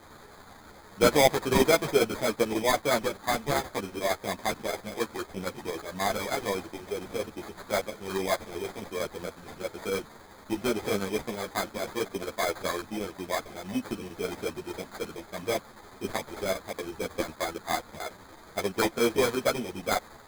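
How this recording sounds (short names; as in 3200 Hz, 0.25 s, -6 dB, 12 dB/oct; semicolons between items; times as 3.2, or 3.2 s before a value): a quantiser's noise floor 8-bit, dither triangular; chopped level 11 Hz, depth 60%, duty 85%; aliases and images of a low sample rate 2800 Hz, jitter 0%; a shimmering, thickened sound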